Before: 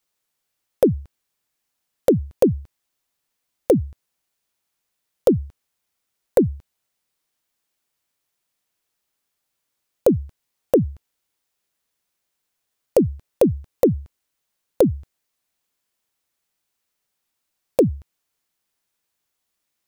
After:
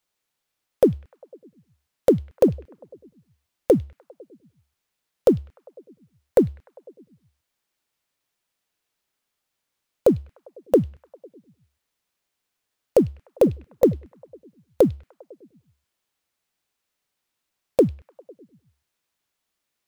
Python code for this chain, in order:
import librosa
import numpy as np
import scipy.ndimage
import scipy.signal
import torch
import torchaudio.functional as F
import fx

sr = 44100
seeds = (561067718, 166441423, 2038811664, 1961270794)

p1 = fx.law_mismatch(x, sr, coded='mu')
p2 = fx.high_shelf(p1, sr, hz=6400.0, db=-5.0)
p3 = p2 + fx.echo_stepped(p2, sr, ms=100, hz=3300.0, octaves=-0.7, feedback_pct=70, wet_db=-6.5, dry=0)
y = fx.upward_expand(p3, sr, threshold_db=-31.0, expansion=1.5)